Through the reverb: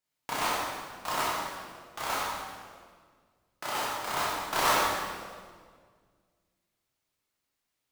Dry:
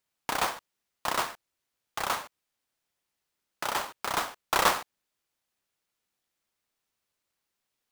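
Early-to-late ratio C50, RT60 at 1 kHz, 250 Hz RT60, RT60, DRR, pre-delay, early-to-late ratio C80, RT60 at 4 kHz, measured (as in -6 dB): -2.0 dB, 1.6 s, 2.1 s, 1.8 s, -7.5 dB, 13 ms, 0.0 dB, 1.4 s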